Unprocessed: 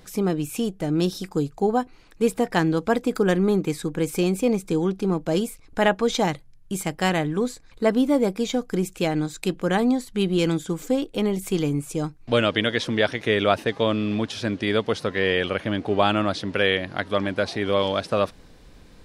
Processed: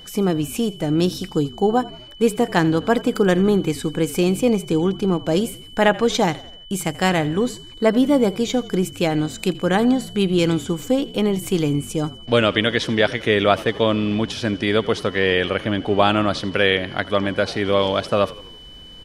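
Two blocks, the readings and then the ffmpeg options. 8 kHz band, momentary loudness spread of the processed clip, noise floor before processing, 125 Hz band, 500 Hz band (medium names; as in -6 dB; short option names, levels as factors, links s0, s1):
+3.5 dB, 6 LU, -50 dBFS, +3.5 dB, +3.5 dB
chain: -filter_complex "[0:a]asplit=5[s0][s1][s2][s3][s4];[s1]adelay=83,afreqshift=-43,volume=0.112[s5];[s2]adelay=166,afreqshift=-86,volume=0.0603[s6];[s3]adelay=249,afreqshift=-129,volume=0.0327[s7];[s4]adelay=332,afreqshift=-172,volume=0.0176[s8];[s0][s5][s6][s7][s8]amix=inputs=5:normalize=0,aeval=exprs='val(0)+0.00631*sin(2*PI*3000*n/s)':c=same,volume=1.5"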